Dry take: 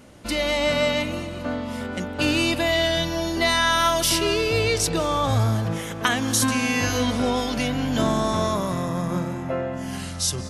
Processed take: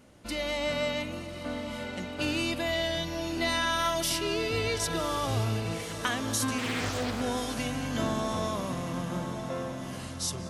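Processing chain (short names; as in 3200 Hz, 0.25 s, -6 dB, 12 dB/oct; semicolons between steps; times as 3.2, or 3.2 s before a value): on a send: diffused feedback echo 1.131 s, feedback 45%, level -9.5 dB; 6.58–7.21 on the sum: Doppler distortion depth 0.62 ms; gain -8.5 dB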